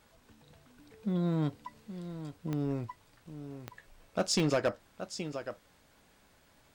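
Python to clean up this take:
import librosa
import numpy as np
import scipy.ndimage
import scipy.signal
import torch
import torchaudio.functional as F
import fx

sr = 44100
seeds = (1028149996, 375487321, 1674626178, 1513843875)

y = fx.fix_declip(x, sr, threshold_db=-22.0)
y = fx.fix_declick_ar(y, sr, threshold=10.0)
y = fx.fix_echo_inverse(y, sr, delay_ms=823, level_db=-11.5)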